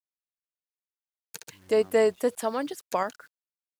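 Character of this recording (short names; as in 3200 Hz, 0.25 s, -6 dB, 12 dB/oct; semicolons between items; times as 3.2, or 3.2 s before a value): tremolo saw up 3.3 Hz, depth 35%; a quantiser's noise floor 10-bit, dither none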